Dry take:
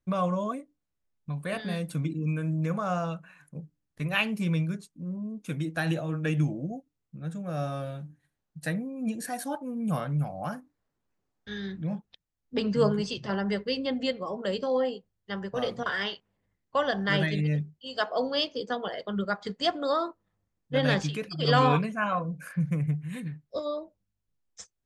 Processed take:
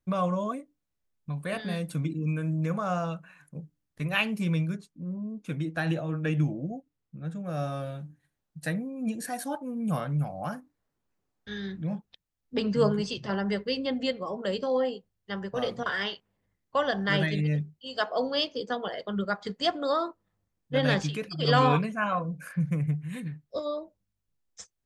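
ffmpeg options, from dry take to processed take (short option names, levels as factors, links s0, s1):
-filter_complex "[0:a]asettb=1/sr,asplit=3[s0][s1][s2];[s0]atrim=end=4.764[s3];[s1]atrim=start=4.76:end=7.45,asetpts=PTS-STARTPTS,afade=t=in:d=0.004:c=qsin,afade=t=out:st=2.686:d=0.004:c=qsin,highshelf=f=6100:g=-10[s4];[s2]atrim=start=7.446[s5];[s3][s4]acrossfade=d=0.004:c1=hsin:c2=qsin[s6];[s6][s5]acrossfade=d=0.004:c1=qsin:c2=hsin"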